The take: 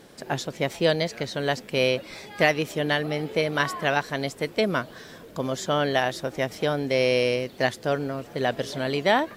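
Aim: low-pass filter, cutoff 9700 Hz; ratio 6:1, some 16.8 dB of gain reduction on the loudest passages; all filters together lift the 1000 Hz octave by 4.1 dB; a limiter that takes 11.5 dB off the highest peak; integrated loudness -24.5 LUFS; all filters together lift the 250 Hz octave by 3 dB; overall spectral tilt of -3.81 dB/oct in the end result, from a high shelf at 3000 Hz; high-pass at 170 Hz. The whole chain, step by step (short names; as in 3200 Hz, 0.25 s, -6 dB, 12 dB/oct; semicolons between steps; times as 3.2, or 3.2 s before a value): HPF 170 Hz; LPF 9700 Hz; bell 250 Hz +4.5 dB; bell 1000 Hz +5 dB; high shelf 3000 Hz +4 dB; compressor 6:1, threshold -32 dBFS; gain +15.5 dB; limiter -13 dBFS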